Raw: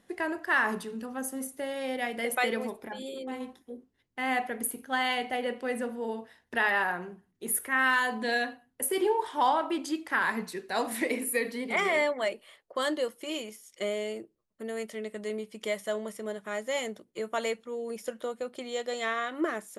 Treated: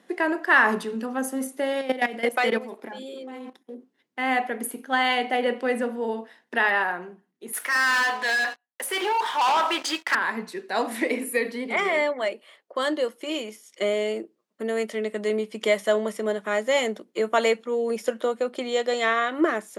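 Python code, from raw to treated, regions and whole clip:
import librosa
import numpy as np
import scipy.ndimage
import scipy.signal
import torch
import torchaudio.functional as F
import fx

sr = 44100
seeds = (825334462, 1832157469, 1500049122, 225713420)

y = fx.chain(x, sr, fx.leveller(passes=1),
    fx.level_steps(step_db=14), at=(1.81, 3.75))
y = fx.chain(y, sr, fx.highpass(hz=1000.0, slope=12),
    fx.high_shelf(hz=8300.0, db=-9.5),
    fx.leveller(passes=5), at=(7.53, 10.15))
y = scipy.signal.sosfilt(scipy.signal.butter(4, 200.0, 'highpass', fs=sr, output='sos'), y)
y = fx.high_shelf(y, sr, hz=7400.0, db=-9.5)
y = fx.rider(y, sr, range_db=10, speed_s=2.0)
y = F.gain(torch.from_numpy(y), 3.0).numpy()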